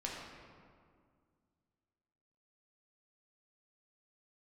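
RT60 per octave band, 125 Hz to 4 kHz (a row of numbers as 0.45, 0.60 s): 2.6, 2.6, 2.1, 2.0, 1.6, 1.1 s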